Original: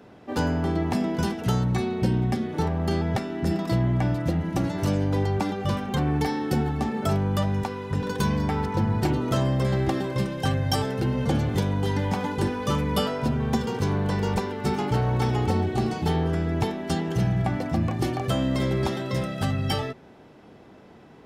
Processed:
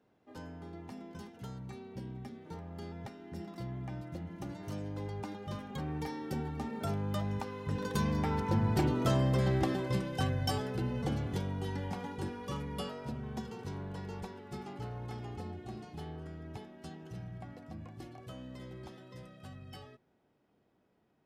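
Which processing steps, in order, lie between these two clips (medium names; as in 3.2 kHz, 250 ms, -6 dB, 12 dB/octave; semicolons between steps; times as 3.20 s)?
Doppler pass-by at 9.09 s, 11 m/s, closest 14 m; trim -5 dB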